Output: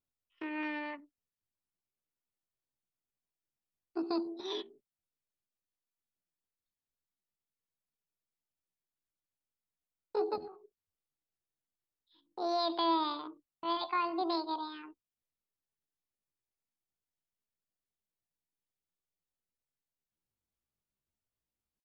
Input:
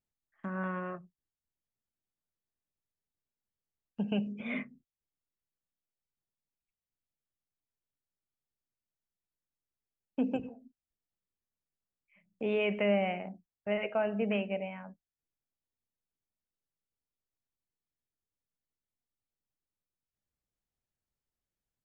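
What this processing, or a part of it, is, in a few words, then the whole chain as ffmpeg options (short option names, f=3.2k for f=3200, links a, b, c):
chipmunk voice: -af "asetrate=72056,aresample=44100,atempo=0.612027,volume=-2dB"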